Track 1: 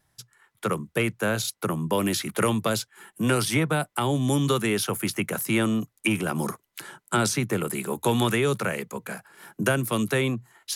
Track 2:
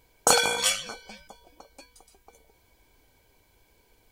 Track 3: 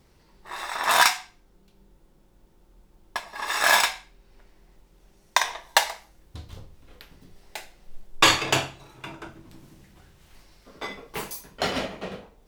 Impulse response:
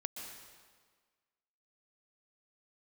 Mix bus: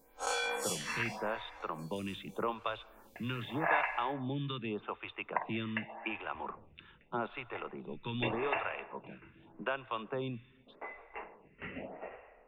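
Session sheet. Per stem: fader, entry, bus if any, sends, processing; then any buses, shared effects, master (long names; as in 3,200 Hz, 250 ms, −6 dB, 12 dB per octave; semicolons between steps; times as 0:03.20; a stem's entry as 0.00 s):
−5.0 dB, 0.00 s, send −16 dB, Chebyshev low-pass with heavy ripple 3,700 Hz, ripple 9 dB
+0.5 dB, 0.00 s, no send, spectrum smeared in time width 85 ms; comb filter 3.8 ms, depth 90%; downward compressor 2.5 to 1, threshold −34 dBFS, peak gain reduction 12 dB
−10.0 dB, 0.00 s, send −3 dB, Chebyshev low-pass with heavy ripple 2,800 Hz, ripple 6 dB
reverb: on, RT60 1.6 s, pre-delay 114 ms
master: phaser with staggered stages 0.84 Hz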